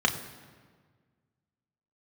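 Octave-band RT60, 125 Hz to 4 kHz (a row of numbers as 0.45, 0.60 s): 2.1, 1.9, 1.7, 1.5, 1.4, 1.1 s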